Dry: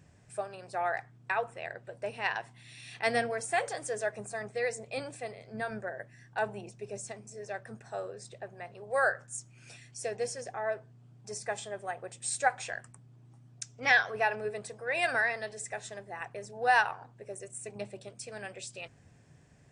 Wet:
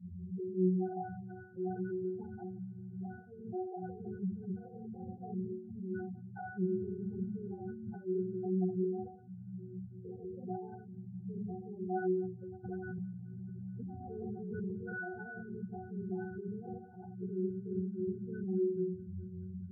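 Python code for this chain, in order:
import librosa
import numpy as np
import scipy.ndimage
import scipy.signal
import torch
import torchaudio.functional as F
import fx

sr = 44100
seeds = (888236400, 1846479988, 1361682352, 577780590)

y = fx.freq_compress(x, sr, knee_hz=2900.0, ratio=1.5)
y = fx.env_lowpass_down(y, sr, base_hz=750.0, full_db=-27.5)
y = fx.highpass(y, sr, hz=73.0, slope=6)
y = fx.gate_flip(y, sr, shuts_db=-25.0, range_db=-30)
y = fx.peak_eq(y, sr, hz=210.0, db=13.0, octaves=1.1)
y = fx.room_shoebox(y, sr, seeds[0], volume_m3=49.0, walls='mixed', distance_m=1.3)
y = fx.over_compress(y, sr, threshold_db=-32.0, ratio=-1.0)
y = fx.low_shelf(y, sr, hz=110.0, db=7.5)
y = fx.octave_resonator(y, sr, note='F#', decay_s=0.5)
y = fx.spec_gate(y, sr, threshold_db=-15, keep='strong')
y = fx.echo_wet_highpass(y, sr, ms=214, feedback_pct=84, hz=2000.0, wet_db=-23)
y = fx.pre_swell(y, sr, db_per_s=24.0, at=(12.63, 14.96), fade=0.02)
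y = F.gain(torch.from_numpy(y), 9.5).numpy()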